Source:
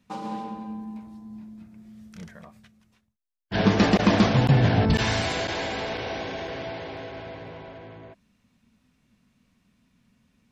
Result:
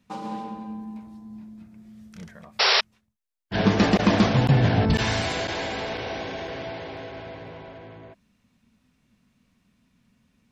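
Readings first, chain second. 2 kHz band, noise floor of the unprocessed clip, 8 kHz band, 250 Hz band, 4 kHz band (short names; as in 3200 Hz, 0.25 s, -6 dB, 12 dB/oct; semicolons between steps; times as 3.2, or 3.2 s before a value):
+2.0 dB, -70 dBFS, +1.5 dB, 0.0 dB, +5.5 dB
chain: painted sound noise, 2.59–2.81, 380–5700 Hz -19 dBFS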